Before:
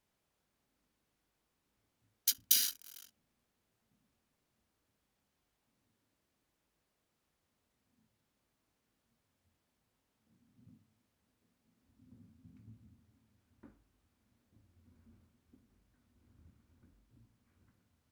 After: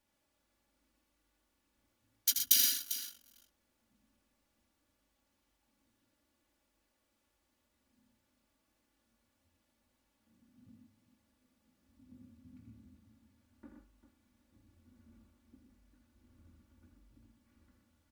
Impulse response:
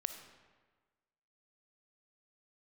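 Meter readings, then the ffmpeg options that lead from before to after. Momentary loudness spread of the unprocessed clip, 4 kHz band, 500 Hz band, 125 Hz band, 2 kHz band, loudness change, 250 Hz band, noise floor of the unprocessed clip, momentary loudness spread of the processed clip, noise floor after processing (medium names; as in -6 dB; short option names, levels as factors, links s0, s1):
11 LU, +3.0 dB, +2.5 dB, -0.5 dB, +3.0 dB, +1.5 dB, +5.0 dB, -83 dBFS, 13 LU, -80 dBFS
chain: -filter_complex "[0:a]aecho=1:1:3.5:0.61,asplit=2[s0][s1];[s1]aecho=0:1:83|123|397:0.473|0.447|0.251[s2];[s0][s2]amix=inputs=2:normalize=0"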